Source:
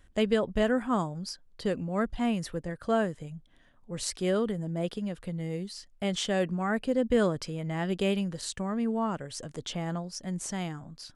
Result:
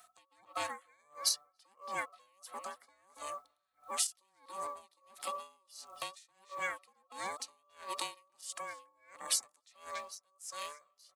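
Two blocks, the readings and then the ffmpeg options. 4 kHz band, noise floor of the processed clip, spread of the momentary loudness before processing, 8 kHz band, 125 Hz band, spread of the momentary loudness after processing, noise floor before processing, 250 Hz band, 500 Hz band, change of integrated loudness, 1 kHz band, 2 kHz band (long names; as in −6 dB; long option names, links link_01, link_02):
−3.0 dB, −77 dBFS, 11 LU, +2.0 dB, −35.5 dB, 19 LU, −60 dBFS, −32.5 dB, −19.5 dB, −9.0 dB, −5.5 dB, −6.5 dB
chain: -filter_complex "[0:a]afftfilt=real='real(if(between(b,1,1008),(2*floor((b-1)/48)+1)*48-b,b),0)':imag='imag(if(between(b,1,1008),(2*floor((b-1)/48)+1)*48-b,b),0)*if(between(b,1,1008),-1,1)':win_size=2048:overlap=0.75,highpass=frequency=220:width=0.5412,highpass=frequency=220:width=1.3066,aeval=exprs='val(0)*sin(2*PI*290*n/s)':channel_layout=same,aeval=exprs='val(0)+0.000501*(sin(2*PI*60*n/s)+sin(2*PI*2*60*n/s)/2+sin(2*PI*3*60*n/s)/3+sin(2*PI*4*60*n/s)/4+sin(2*PI*5*60*n/s)/5)':channel_layout=same,acompressor=threshold=-43dB:ratio=3,aderivative,dynaudnorm=framelen=200:gausssize=3:maxgain=7.5dB,asplit=2[link_01][link_02];[link_02]adelay=282,lowpass=frequency=1100:poles=1,volume=-10dB,asplit=2[link_03][link_04];[link_04]adelay=282,lowpass=frequency=1100:poles=1,volume=0.4,asplit=2[link_05][link_06];[link_06]adelay=282,lowpass=frequency=1100:poles=1,volume=0.4,asplit=2[link_07][link_08];[link_08]adelay=282,lowpass=frequency=1100:poles=1,volume=0.4[link_09];[link_01][link_03][link_05][link_07][link_09]amix=inputs=5:normalize=0,acrusher=bits=8:mode=log:mix=0:aa=0.000001,alimiter=level_in=7.5dB:limit=-24dB:level=0:latency=1:release=492,volume=-7.5dB,adynamicequalizer=threshold=0.001:dfrequency=4000:dqfactor=0.94:tfrequency=4000:tqfactor=0.94:attack=5:release=100:ratio=0.375:range=2.5:mode=cutabove:tftype=bell,aeval=exprs='val(0)*pow(10,-34*(0.5-0.5*cos(2*PI*1.5*n/s))/20)':channel_layout=same,volume=16dB"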